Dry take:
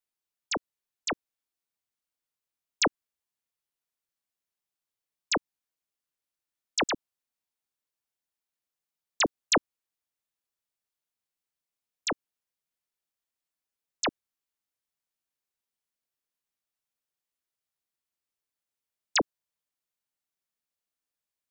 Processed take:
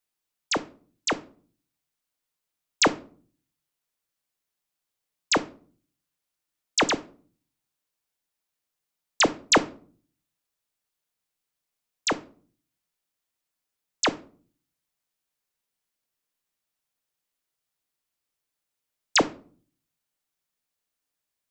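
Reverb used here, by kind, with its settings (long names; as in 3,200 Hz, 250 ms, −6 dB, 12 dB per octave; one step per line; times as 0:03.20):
rectangular room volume 360 cubic metres, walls furnished, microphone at 0.47 metres
level +5 dB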